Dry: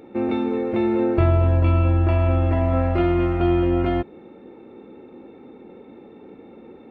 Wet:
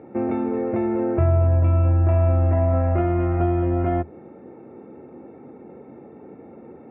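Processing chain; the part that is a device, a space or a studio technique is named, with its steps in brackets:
bass amplifier (downward compressor 4 to 1, threshold −20 dBFS, peak gain reduction 6.5 dB; loudspeaker in its box 76–2,100 Hz, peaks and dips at 82 Hz +9 dB, 140 Hz +9 dB, 670 Hz +6 dB)

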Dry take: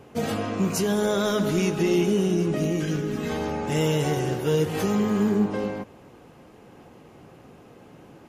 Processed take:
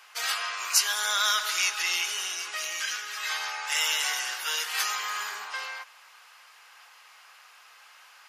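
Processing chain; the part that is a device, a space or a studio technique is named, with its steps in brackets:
headphones lying on a table (high-pass filter 1,200 Hz 24 dB per octave; parametric band 4,800 Hz +5.5 dB 0.5 octaves)
level +7 dB

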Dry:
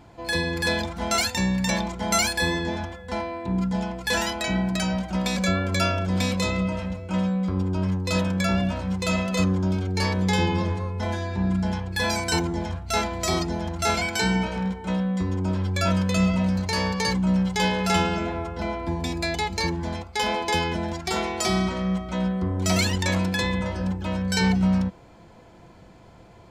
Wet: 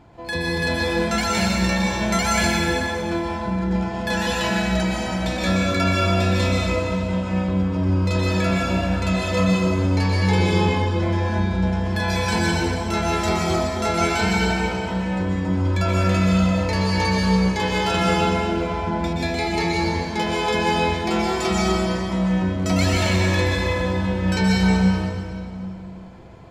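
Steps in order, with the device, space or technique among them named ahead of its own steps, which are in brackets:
swimming-pool hall (convolution reverb RT60 2.1 s, pre-delay 117 ms, DRR −4 dB; high-shelf EQ 4,100 Hz −8 dB)

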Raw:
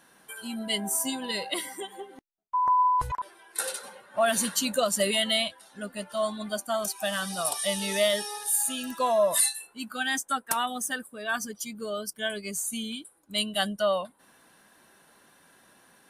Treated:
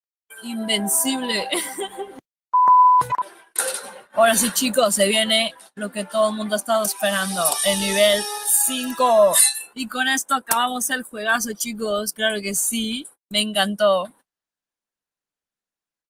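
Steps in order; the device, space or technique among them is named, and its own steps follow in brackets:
video call (high-pass filter 140 Hz 24 dB per octave; automatic gain control gain up to 12 dB; noise gate −40 dBFS, range −47 dB; level −2 dB; Opus 24 kbit/s 48,000 Hz)

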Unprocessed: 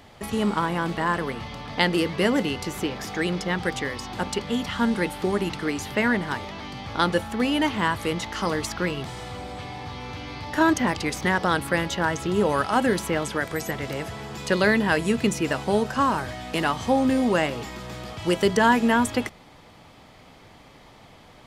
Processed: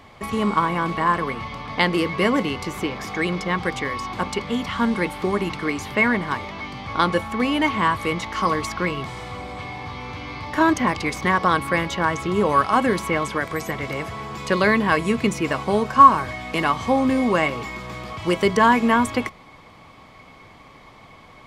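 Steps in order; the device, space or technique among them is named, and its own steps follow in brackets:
inside a helmet (high-shelf EQ 5,100 Hz −5 dB; hollow resonant body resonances 1,100/2,200 Hz, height 16 dB, ringing for 70 ms)
level +1.5 dB

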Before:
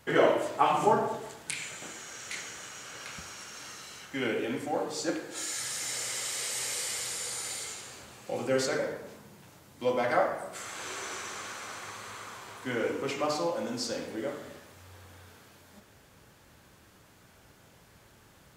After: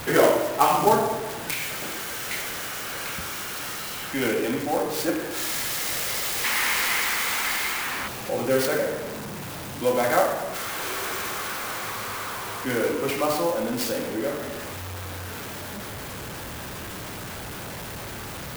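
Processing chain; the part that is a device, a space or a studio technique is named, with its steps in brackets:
early CD player with a faulty converter (converter with a step at zero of −34.5 dBFS; converter with an unsteady clock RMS 0.04 ms)
0:06.44–0:08.08: octave-band graphic EQ 125/250/500/1,000/2,000 Hz −6/+4/−5/+7/+9 dB
level +4.5 dB

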